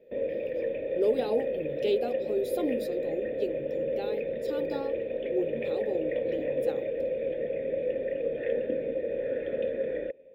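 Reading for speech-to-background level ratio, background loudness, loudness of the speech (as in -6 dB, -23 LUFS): -2.5 dB, -31.5 LUFS, -34.0 LUFS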